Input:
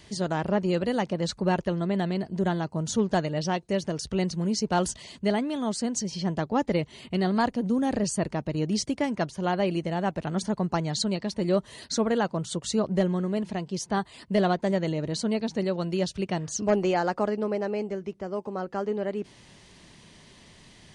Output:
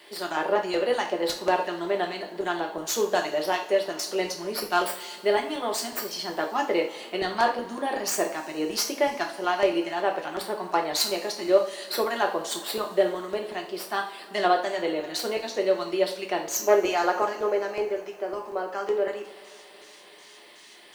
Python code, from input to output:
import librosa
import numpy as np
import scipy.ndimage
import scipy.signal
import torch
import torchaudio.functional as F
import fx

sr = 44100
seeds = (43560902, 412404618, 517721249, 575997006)

y = fx.tracing_dist(x, sr, depth_ms=0.053)
y = scipy.signal.sosfilt(scipy.signal.butter(4, 370.0, 'highpass', fs=sr, output='sos'), y)
y = fx.filter_lfo_notch(y, sr, shape='square', hz=2.7, low_hz=490.0, high_hz=6400.0, q=1.0)
y = fx.dmg_noise_colour(y, sr, seeds[0], colour='white', level_db=-72.0)
y = fx.rev_double_slope(y, sr, seeds[1], early_s=0.41, late_s=3.9, knee_db=-22, drr_db=1.0)
y = y * 10.0 ** (3.0 / 20.0)